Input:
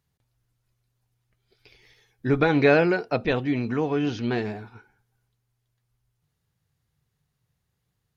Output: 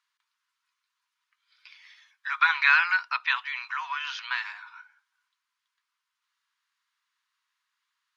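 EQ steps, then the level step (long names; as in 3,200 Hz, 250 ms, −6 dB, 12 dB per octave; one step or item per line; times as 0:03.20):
Chebyshev high-pass filter 980 Hz, order 6
high-frequency loss of the air 50 metres
high-shelf EQ 5,800 Hz −6.5 dB
+7.5 dB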